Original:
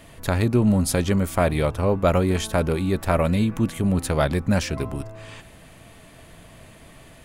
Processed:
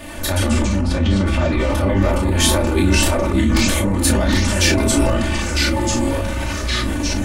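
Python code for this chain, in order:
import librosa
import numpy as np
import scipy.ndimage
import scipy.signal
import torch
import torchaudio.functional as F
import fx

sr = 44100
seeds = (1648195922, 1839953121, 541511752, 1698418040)

y = fx.over_compress(x, sr, threshold_db=-27.0, ratio=-1.0)
y = fx.lowpass(y, sr, hz=fx.line((0.77, 2200.0), (1.68, 3800.0)), slope=12, at=(0.77, 1.68), fade=0.02)
y = fx.room_early_taps(y, sr, ms=(21, 31, 55), db=(-5.5, -4.0, -11.5))
y = fx.echo_pitch(y, sr, ms=83, semitones=-3, count=3, db_per_echo=-3.0)
y = y + 0.95 * np.pad(y, (int(3.4 * sr / 1000.0), 0))[:len(y)]
y = fx.sustainer(y, sr, db_per_s=21.0)
y = y * librosa.db_to_amplitude(3.0)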